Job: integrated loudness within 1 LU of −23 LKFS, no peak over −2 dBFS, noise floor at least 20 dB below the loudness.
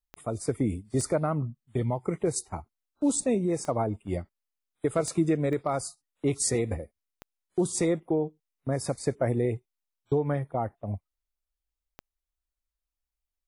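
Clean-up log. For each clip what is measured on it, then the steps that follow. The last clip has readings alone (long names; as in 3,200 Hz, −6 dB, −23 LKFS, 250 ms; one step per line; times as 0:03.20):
number of clicks 7; integrated loudness −29.5 LKFS; sample peak −13.5 dBFS; target loudness −23.0 LKFS
→ click removal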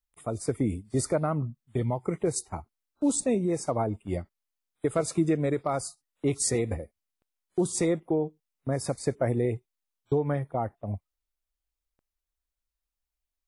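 number of clicks 0; integrated loudness −29.5 LKFS; sample peak −13.5 dBFS; target loudness −23.0 LKFS
→ level +6.5 dB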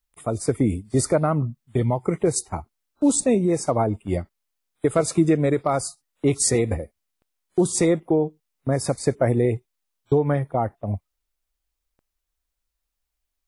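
integrated loudness −23.0 LKFS; sample peak −7.0 dBFS; background noise floor −80 dBFS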